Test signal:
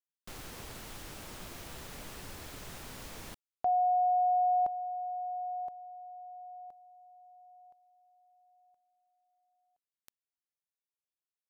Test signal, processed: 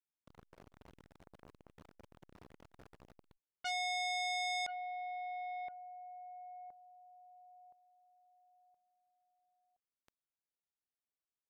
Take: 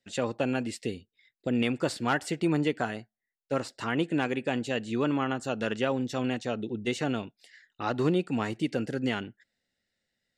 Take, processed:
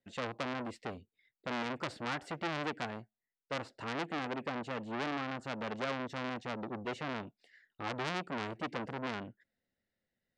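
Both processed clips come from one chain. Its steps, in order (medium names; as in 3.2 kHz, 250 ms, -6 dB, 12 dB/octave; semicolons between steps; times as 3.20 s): low-pass 1.2 kHz 6 dB/octave; transformer saturation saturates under 2.8 kHz; trim -2 dB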